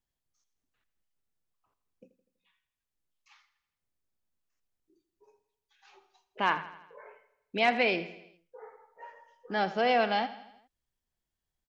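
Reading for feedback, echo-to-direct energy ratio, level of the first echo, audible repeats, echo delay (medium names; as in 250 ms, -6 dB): 55%, -13.5 dB, -15.0 dB, 4, 82 ms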